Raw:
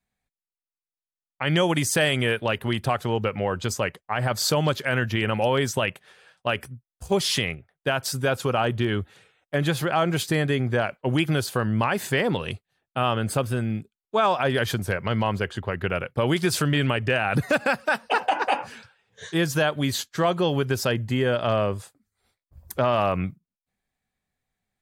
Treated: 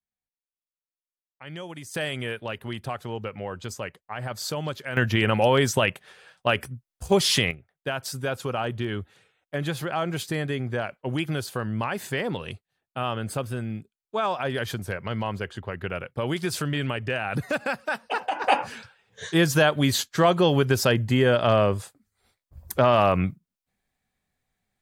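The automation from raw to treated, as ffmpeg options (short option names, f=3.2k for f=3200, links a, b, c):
-af "asetnsamples=n=441:p=0,asendcmd='1.94 volume volume -8dB;4.97 volume volume 2.5dB;7.51 volume volume -5dB;18.44 volume volume 3dB',volume=-16.5dB"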